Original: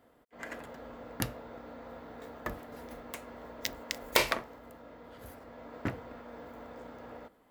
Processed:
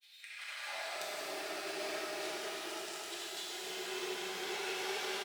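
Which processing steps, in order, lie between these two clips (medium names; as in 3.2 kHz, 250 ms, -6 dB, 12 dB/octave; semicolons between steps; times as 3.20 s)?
gliding tape speed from 118% -> 168%; comb 4.9 ms, depth 46%; granulator, pitch spread up and down by 0 st; ten-band graphic EQ 250 Hz -10 dB, 500 Hz -5 dB, 1 kHz -10 dB, 4 kHz +8 dB, 8 kHz +4 dB; high-pass sweep 3 kHz -> 340 Hz, 0.09–1.15 s; treble shelf 4.4 kHz +6 dB; level rider gain up to 12.5 dB; slow attack 277 ms; granulator, pitch spread up and down by 0 st; compression 3:1, threshold -52 dBFS, peak gain reduction 12.5 dB; pitch-shifted reverb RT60 3.9 s, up +12 st, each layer -8 dB, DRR -7 dB; trim +4.5 dB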